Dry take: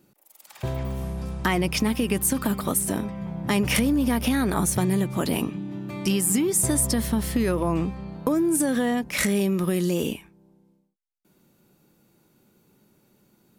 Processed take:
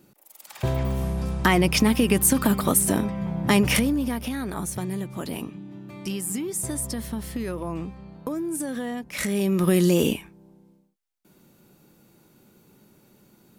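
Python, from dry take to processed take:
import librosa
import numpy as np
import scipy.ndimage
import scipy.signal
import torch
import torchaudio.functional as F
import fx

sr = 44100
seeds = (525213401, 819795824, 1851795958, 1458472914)

y = fx.gain(x, sr, db=fx.line((3.56, 4.0), (4.27, -7.0), (9.09, -7.0), (9.72, 5.0)))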